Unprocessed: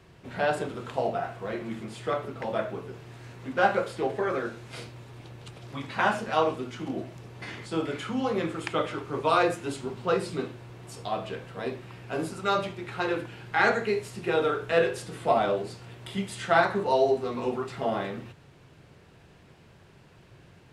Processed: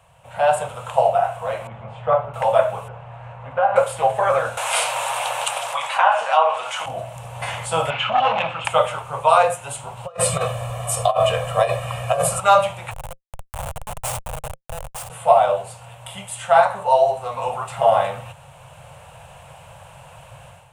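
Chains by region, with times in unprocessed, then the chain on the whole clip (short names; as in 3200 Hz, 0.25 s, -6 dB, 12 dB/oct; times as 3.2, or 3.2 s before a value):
1.67–2.34 tape spacing loss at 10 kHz 44 dB + doubler 20 ms -12.5 dB
2.88–3.76 LPF 1900 Hz + compressor 3:1, threshold -29 dBFS
4.57–6.86 treble ducked by the level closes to 3000 Hz, closed at -21 dBFS + HPF 740 Hz + fast leveller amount 50%
7.9–8.65 speaker cabinet 120–4400 Hz, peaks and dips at 240 Hz +6 dB, 410 Hz -7 dB, 610 Hz -8 dB, 2700 Hz +10 dB + core saturation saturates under 1100 Hz
10.06–12.4 comb 1.7 ms, depth 92% + negative-ratio compressor -31 dBFS, ratio -0.5
12.91–15.1 compressor 4:1, threshold -39 dBFS + resonant high shelf 3700 Hz +10 dB, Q 3 + Schmitt trigger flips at -33.5 dBFS
whole clip: EQ curve 140 Hz 0 dB, 260 Hz -22 dB, 370 Hz -24 dB, 530 Hz +6 dB, 870 Hz +10 dB, 1900 Hz -3 dB, 2800 Hz +5 dB, 4800 Hz -7 dB, 8800 Hz +13 dB, 13000 Hz +7 dB; AGC gain up to 11.5 dB; gain -1 dB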